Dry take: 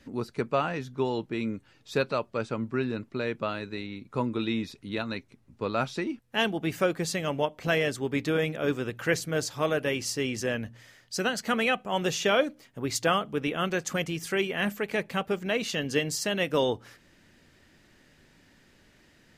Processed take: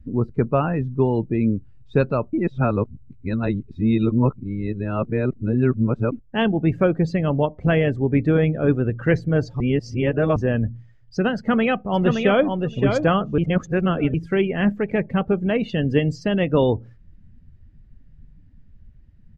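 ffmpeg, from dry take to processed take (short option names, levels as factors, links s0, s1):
-filter_complex "[0:a]asplit=2[s0][s1];[s1]afade=t=in:st=11.36:d=0.01,afade=t=out:st=12.47:d=0.01,aecho=0:1:570|1140|1710:0.562341|0.0843512|0.0126527[s2];[s0][s2]amix=inputs=2:normalize=0,asplit=7[s3][s4][s5][s6][s7][s8][s9];[s3]atrim=end=2.332[s10];[s4]atrim=start=2.328:end=6.122,asetpts=PTS-STARTPTS,areverse[s11];[s5]atrim=start=6.118:end=9.602[s12];[s6]atrim=start=9.598:end=10.362,asetpts=PTS-STARTPTS,areverse[s13];[s7]atrim=start=10.358:end=13.382[s14];[s8]atrim=start=13.378:end=14.142,asetpts=PTS-STARTPTS,areverse[s15];[s9]atrim=start=14.138[s16];[s10][s11]acrossfade=d=0.004:c1=hsin:c2=hsin[s17];[s17][s12]acrossfade=d=0.004:c1=hsin:c2=hsin[s18];[s18][s13]acrossfade=d=0.004:c1=hsin:c2=hsin[s19];[s19][s14]acrossfade=d=0.004:c1=hsin:c2=hsin[s20];[s20][s15]acrossfade=d=0.004:c1=hsin:c2=hsin[s21];[s21][s16]acrossfade=d=0.004:c1=hsin:c2=hsin,aemphasis=mode=reproduction:type=riaa,afftdn=nr=19:nf=-39,volume=1.58"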